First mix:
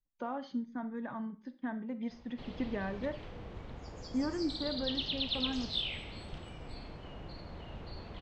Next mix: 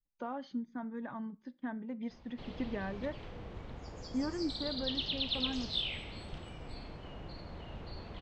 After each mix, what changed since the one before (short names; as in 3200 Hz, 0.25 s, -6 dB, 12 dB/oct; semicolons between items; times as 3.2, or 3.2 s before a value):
speech: send -11.0 dB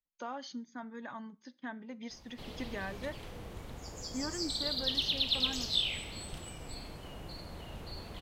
speech: add tilt +2.5 dB/oct; master: remove air absorption 180 m